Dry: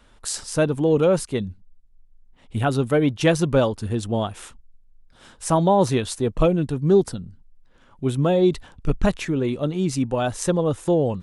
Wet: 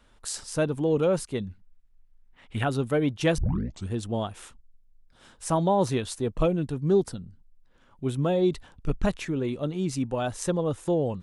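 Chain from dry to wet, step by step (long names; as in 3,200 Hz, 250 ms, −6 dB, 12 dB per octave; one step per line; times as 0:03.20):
0:01.47–0:02.64: parametric band 1,800 Hz +11.5 dB 2 octaves
0:03.38: tape start 0.51 s
level −5.5 dB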